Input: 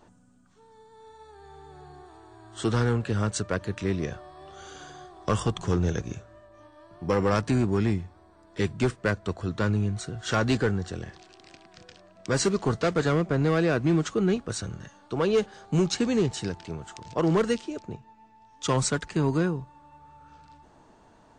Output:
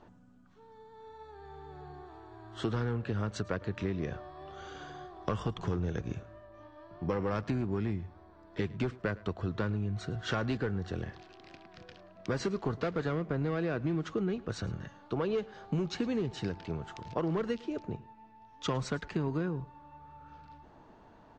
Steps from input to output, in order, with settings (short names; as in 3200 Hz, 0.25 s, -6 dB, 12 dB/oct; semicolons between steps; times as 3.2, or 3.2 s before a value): air absorption 170 m; compressor, threshold -29 dBFS, peak gain reduction 9.5 dB; on a send: echo 0.109 s -21 dB